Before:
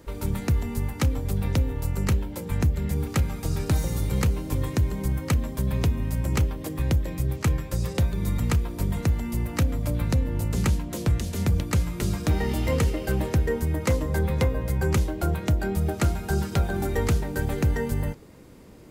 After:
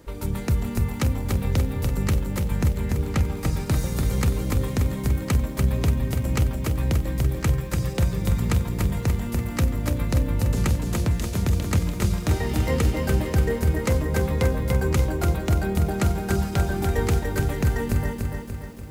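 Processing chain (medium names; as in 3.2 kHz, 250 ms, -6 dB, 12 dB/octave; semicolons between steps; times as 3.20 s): 2.79–3.37 s: treble shelf 8.3 kHz -10 dB; bit-crushed delay 291 ms, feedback 55%, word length 9-bit, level -4 dB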